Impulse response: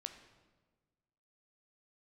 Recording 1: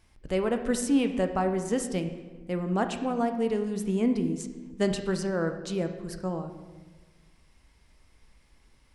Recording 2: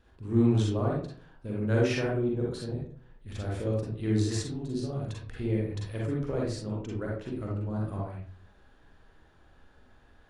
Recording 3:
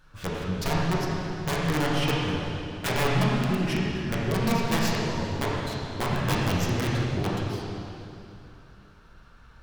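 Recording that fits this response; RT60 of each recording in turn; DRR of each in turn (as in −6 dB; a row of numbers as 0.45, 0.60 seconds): 1; 1.4, 0.50, 2.7 seconds; 6.5, −4.5, −6.0 decibels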